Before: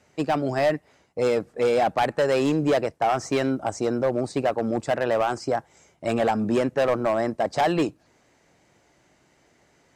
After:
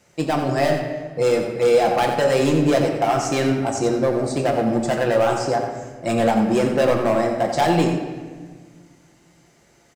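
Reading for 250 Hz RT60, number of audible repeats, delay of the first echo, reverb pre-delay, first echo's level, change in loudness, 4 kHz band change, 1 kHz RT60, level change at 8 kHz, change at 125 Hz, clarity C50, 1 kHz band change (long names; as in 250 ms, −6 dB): 2.2 s, 1, 88 ms, 6 ms, −8.5 dB, +4.5 dB, +5.5 dB, 1.4 s, +8.0 dB, +7.5 dB, 4.5 dB, +3.5 dB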